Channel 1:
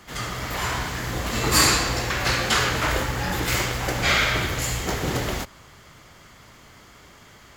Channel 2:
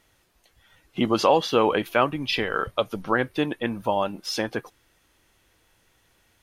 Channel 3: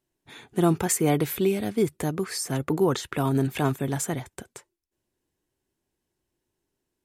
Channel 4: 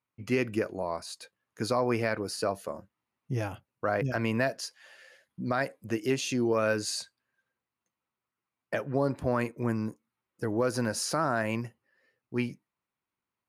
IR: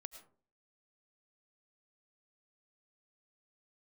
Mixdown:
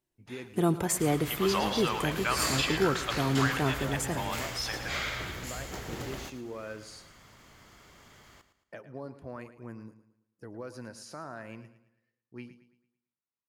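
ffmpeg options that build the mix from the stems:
-filter_complex "[0:a]acompressor=mode=upward:threshold=0.02:ratio=2.5,adelay=850,volume=0.211,asplit=2[s0][s1];[s1]volume=0.251[s2];[1:a]highpass=1200,adelay=300,volume=0.596,asplit=2[s3][s4];[s4]volume=0.398[s5];[2:a]volume=0.447,asplit=3[s6][s7][s8];[s7]volume=0.562[s9];[s8]volume=0.2[s10];[3:a]highshelf=f=9500:g=-6.5,volume=0.2,asplit=2[s11][s12];[s12]volume=0.211[s13];[4:a]atrim=start_sample=2205[s14];[s9][s14]afir=irnorm=-1:irlink=0[s15];[s2][s5][s10][s13]amix=inputs=4:normalize=0,aecho=0:1:111|222|333|444|555|666:1|0.4|0.16|0.064|0.0256|0.0102[s16];[s0][s3][s6][s11][s15][s16]amix=inputs=6:normalize=0"

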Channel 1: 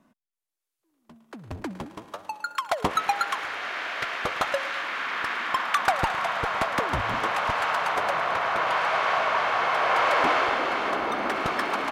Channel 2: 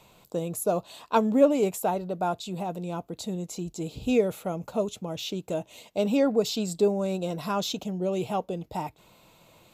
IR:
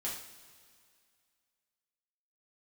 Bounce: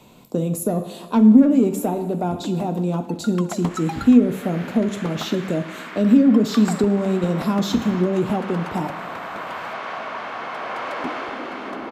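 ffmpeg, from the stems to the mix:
-filter_complex "[0:a]adelay=800,volume=0.447[s0];[1:a]asoftclip=type=tanh:threshold=0.158,volume=1.12,asplit=2[s1][s2];[s2]volume=0.596[s3];[2:a]atrim=start_sample=2205[s4];[s3][s4]afir=irnorm=-1:irlink=0[s5];[s0][s1][s5]amix=inputs=3:normalize=0,equalizer=f=240:w=1.2:g=13,acrossover=split=300[s6][s7];[s7]acompressor=threshold=0.0708:ratio=4[s8];[s6][s8]amix=inputs=2:normalize=0"

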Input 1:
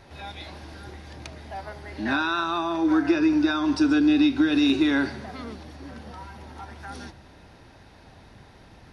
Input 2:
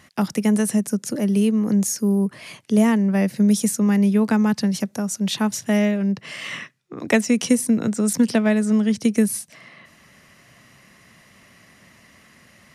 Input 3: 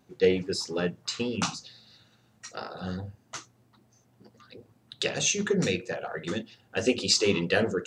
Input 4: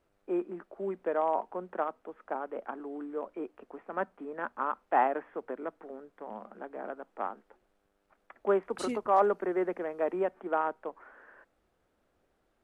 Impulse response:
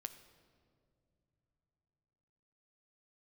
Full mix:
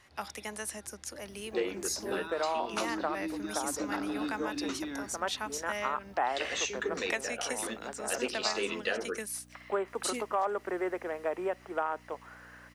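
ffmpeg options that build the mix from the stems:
-filter_complex "[0:a]volume=0.141[s0];[1:a]highpass=800,volume=0.422[s1];[2:a]highpass=f=260:w=0.5412,highpass=f=260:w=1.3066,equalizer=f=1700:w=0.41:g=6.5,adelay=1350,volume=0.355[s2];[3:a]aeval=exprs='val(0)+0.00501*(sin(2*PI*60*n/s)+sin(2*PI*2*60*n/s)/2+sin(2*PI*3*60*n/s)/3+sin(2*PI*4*60*n/s)/4+sin(2*PI*5*60*n/s)/5)':c=same,aemphasis=mode=production:type=riaa,adelay=1250,volume=1.19[s3];[s0][s1][s2][s3]amix=inputs=4:normalize=0,highshelf=f=11000:g=-8,acompressor=threshold=0.0447:ratio=4"

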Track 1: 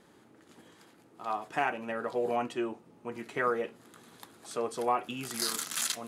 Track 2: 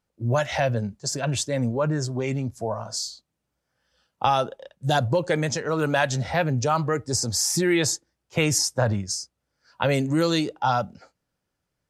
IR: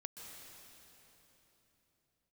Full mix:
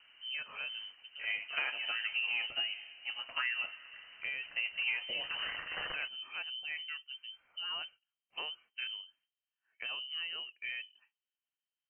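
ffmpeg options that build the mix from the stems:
-filter_complex "[0:a]volume=0.75,asplit=2[s0][s1];[s1]volume=0.282[s2];[1:a]volume=0.119[s3];[2:a]atrim=start_sample=2205[s4];[s2][s4]afir=irnorm=-1:irlink=0[s5];[s0][s3][s5]amix=inputs=3:normalize=0,lowpass=f=2700:t=q:w=0.5098,lowpass=f=2700:t=q:w=0.6013,lowpass=f=2700:t=q:w=0.9,lowpass=f=2700:t=q:w=2.563,afreqshift=-3200,acompressor=threshold=0.0282:ratio=6"

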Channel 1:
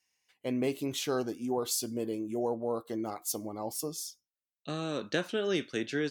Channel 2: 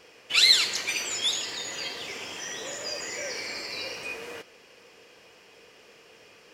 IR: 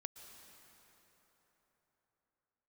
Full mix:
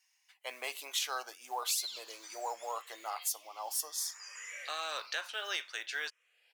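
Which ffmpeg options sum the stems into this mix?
-filter_complex "[0:a]highpass=64,acontrast=60,acrusher=bits=9:mode=log:mix=0:aa=0.000001,volume=0.794,asplit=2[s0][s1];[1:a]asplit=2[s2][s3];[s3]afreqshift=0.6[s4];[s2][s4]amix=inputs=2:normalize=1,adelay=1350,volume=0.447[s5];[s1]apad=whole_len=347798[s6];[s5][s6]sidechaincompress=threshold=0.0178:ratio=5:attack=6.7:release=723[s7];[s0][s7]amix=inputs=2:normalize=0,highpass=f=810:w=0.5412,highpass=f=810:w=1.3066,alimiter=limit=0.0841:level=0:latency=1:release=490"

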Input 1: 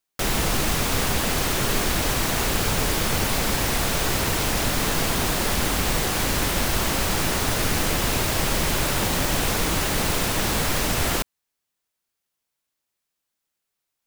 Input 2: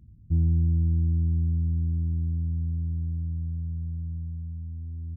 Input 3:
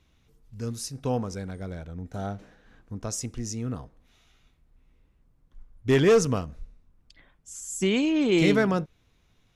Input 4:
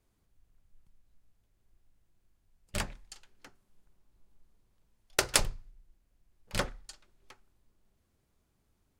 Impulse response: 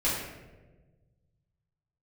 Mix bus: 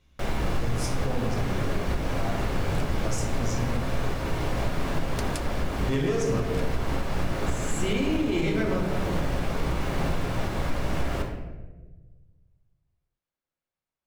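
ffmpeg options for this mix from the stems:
-filter_complex "[0:a]lowpass=f=1300:p=1,volume=0.473,asplit=2[s0][s1];[s1]volume=0.316[s2];[2:a]volume=0.562,asplit=2[s3][s4];[s4]volume=0.531[s5];[3:a]volume=0.335[s6];[4:a]atrim=start_sample=2205[s7];[s2][s5]amix=inputs=2:normalize=0[s8];[s8][s7]afir=irnorm=-1:irlink=0[s9];[s0][s3][s6][s9]amix=inputs=4:normalize=0,alimiter=limit=0.158:level=0:latency=1:release=252"

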